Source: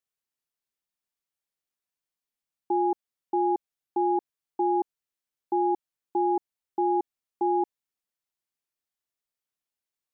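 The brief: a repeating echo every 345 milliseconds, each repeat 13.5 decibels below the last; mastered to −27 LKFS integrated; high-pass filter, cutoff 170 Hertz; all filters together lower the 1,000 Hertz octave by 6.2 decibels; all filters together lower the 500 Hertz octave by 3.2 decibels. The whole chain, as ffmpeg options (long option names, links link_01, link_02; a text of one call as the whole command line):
ffmpeg -i in.wav -af "highpass=170,equalizer=frequency=500:width_type=o:gain=-5,equalizer=frequency=1000:width_type=o:gain=-6,aecho=1:1:345|690:0.211|0.0444,volume=6dB" out.wav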